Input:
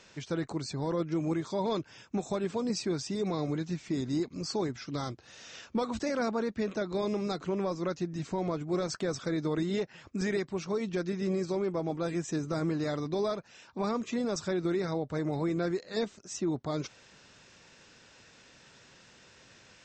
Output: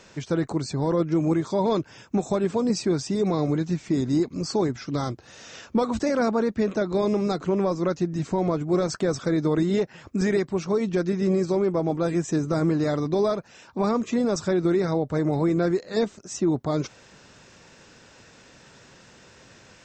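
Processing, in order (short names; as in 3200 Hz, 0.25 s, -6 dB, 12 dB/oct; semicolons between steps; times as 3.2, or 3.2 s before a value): bell 3400 Hz -5.5 dB 2.3 oct; gain +8.5 dB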